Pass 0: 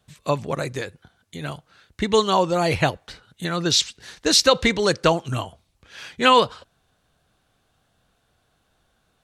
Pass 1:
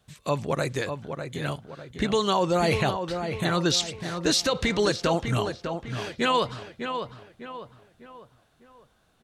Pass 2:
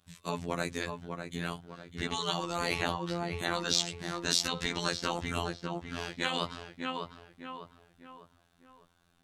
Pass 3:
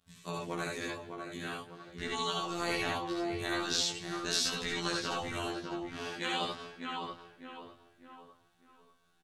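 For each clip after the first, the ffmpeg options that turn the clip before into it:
-filter_complex "[0:a]alimiter=limit=-14dB:level=0:latency=1:release=53,asplit=2[a][b];[b]adelay=601,lowpass=f=2.7k:p=1,volume=-7dB,asplit=2[c][d];[d]adelay=601,lowpass=f=2.7k:p=1,volume=0.42,asplit=2[e][f];[f]adelay=601,lowpass=f=2.7k:p=1,volume=0.42,asplit=2[g][h];[h]adelay=601,lowpass=f=2.7k:p=1,volume=0.42,asplit=2[i][j];[j]adelay=601,lowpass=f=2.7k:p=1,volume=0.42[k];[a][c][e][g][i][k]amix=inputs=6:normalize=0"
-af "afftfilt=real='hypot(re,im)*cos(PI*b)':imag='0':win_size=2048:overlap=0.75,equalizer=f=530:w=2:g=-6.5,afftfilt=real='re*lt(hypot(re,im),0.2)':imag='im*lt(hypot(re,im),0.2)':win_size=1024:overlap=0.75"
-filter_complex "[0:a]flanger=delay=16:depth=4.3:speed=0.45,asplit=2[a][b];[b]aecho=0:1:67|76|84|227:0.562|0.631|0.447|0.106[c];[a][c]amix=inputs=2:normalize=0,volume=-1.5dB"

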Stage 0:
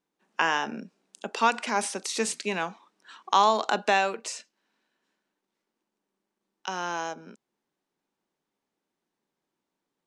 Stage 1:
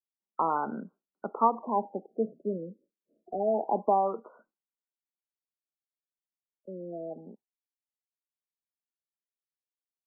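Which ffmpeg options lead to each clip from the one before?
-af "agate=range=-33dB:threshold=-46dB:ratio=3:detection=peak,afftfilt=real='re*lt(b*sr/1024,600*pow(1600/600,0.5+0.5*sin(2*PI*0.27*pts/sr)))':imag='im*lt(b*sr/1024,600*pow(1600/600,0.5+0.5*sin(2*PI*0.27*pts/sr)))':win_size=1024:overlap=0.75"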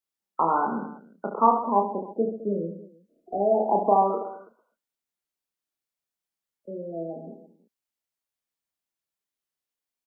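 -af "aecho=1:1:30|72|130.8|213.1|328.4:0.631|0.398|0.251|0.158|0.1,volume=3.5dB"

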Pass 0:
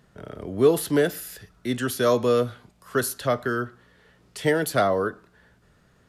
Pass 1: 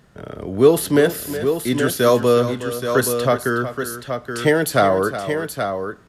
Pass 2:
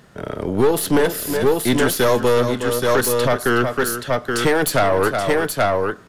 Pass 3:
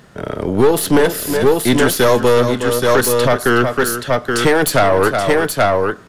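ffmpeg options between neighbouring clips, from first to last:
-af "aecho=1:1:368|826:0.251|0.422,volume=5.5dB"
-af "lowshelf=f=120:g=-7.5,alimiter=limit=-11.5dB:level=0:latency=1:release=376,aeval=exprs='(tanh(8.91*val(0)+0.6)-tanh(0.6))/8.91':c=same,volume=9dB"
-af "equalizer=f=15k:w=1.6:g=-4.5,volume=4dB"

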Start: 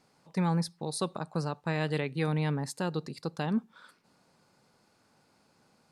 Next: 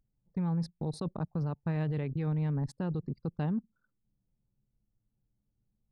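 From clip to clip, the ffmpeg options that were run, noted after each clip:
-af "anlmdn=1,aemphasis=mode=reproduction:type=riaa,alimiter=level_in=0.5dB:limit=-24dB:level=0:latency=1:release=21,volume=-0.5dB,volume=-1.5dB"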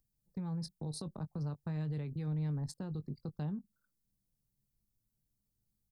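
-filter_complex "[0:a]acrossover=split=200[a][b];[b]acompressor=threshold=-38dB:ratio=6[c];[a][c]amix=inputs=2:normalize=0,aexciter=amount=2.6:drive=7.5:freq=3.9k,asplit=2[d][e];[e]adelay=20,volume=-12dB[f];[d][f]amix=inputs=2:normalize=0,volume=-5.5dB"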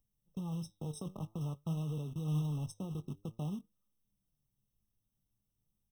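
-af "flanger=delay=3.8:depth=7.8:regen=82:speed=0.5:shape=triangular,acrusher=bits=4:mode=log:mix=0:aa=0.000001,afftfilt=real='re*eq(mod(floor(b*sr/1024/1300),2),0)':imag='im*eq(mod(floor(b*sr/1024/1300),2),0)':win_size=1024:overlap=0.75,volume=4.5dB"

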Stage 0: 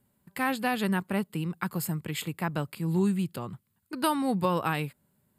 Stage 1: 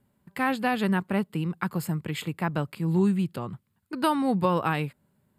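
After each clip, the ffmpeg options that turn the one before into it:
-af "aemphasis=mode=reproduction:type=cd,volume=2.5dB"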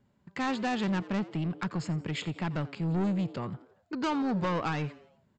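-filter_complex "[0:a]aresample=16000,asoftclip=type=tanh:threshold=-25.5dB,aresample=44100,asplit=5[a][b][c][d][e];[b]adelay=87,afreqshift=130,volume=-19dB[f];[c]adelay=174,afreqshift=260,volume=-25.9dB[g];[d]adelay=261,afreqshift=390,volume=-32.9dB[h];[e]adelay=348,afreqshift=520,volume=-39.8dB[i];[a][f][g][h][i]amix=inputs=5:normalize=0"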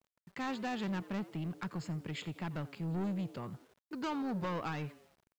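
-af "acrusher=bits=9:mix=0:aa=0.000001,volume=-7dB"

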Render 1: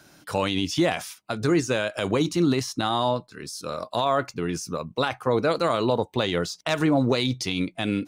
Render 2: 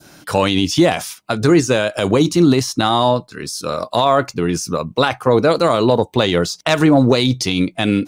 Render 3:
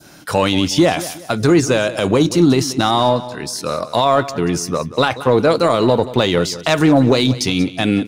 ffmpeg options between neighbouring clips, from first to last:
-af "adynamicequalizer=threshold=0.0126:dfrequency=1900:dqfactor=0.78:tfrequency=1900:tqfactor=0.78:attack=5:release=100:ratio=0.375:range=2.5:mode=cutabove:tftype=bell,acontrast=30,volume=4.5dB"
-filter_complex "[0:a]asplit=2[a][b];[b]asoftclip=type=hard:threshold=-17dB,volume=-12dB[c];[a][c]amix=inputs=2:normalize=0,aecho=1:1:183|366|549:0.168|0.0588|0.0206,volume=-1dB"

